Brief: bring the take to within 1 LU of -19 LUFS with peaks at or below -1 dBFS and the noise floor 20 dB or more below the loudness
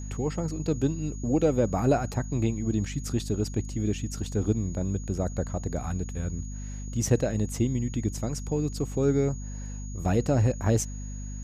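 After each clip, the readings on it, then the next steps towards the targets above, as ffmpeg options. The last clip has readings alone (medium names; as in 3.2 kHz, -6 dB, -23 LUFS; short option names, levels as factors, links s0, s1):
hum 50 Hz; highest harmonic 250 Hz; hum level -34 dBFS; steady tone 6.7 kHz; tone level -46 dBFS; loudness -28.5 LUFS; peak level -10.5 dBFS; loudness target -19.0 LUFS
-> -af "bandreject=f=50:t=h:w=6,bandreject=f=100:t=h:w=6,bandreject=f=150:t=h:w=6,bandreject=f=200:t=h:w=6,bandreject=f=250:t=h:w=6"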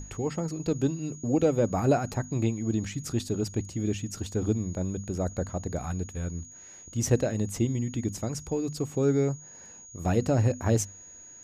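hum not found; steady tone 6.7 kHz; tone level -46 dBFS
-> -af "bandreject=f=6700:w=30"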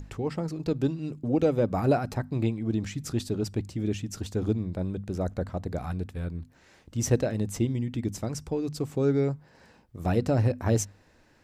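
steady tone not found; loudness -29.0 LUFS; peak level -11.5 dBFS; loudness target -19.0 LUFS
-> -af "volume=3.16"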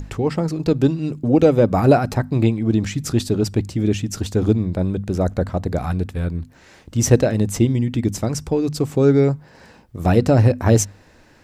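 loudness -19.0 LUFS; peak level -1.5 dBFS; noise floor -50 dBFS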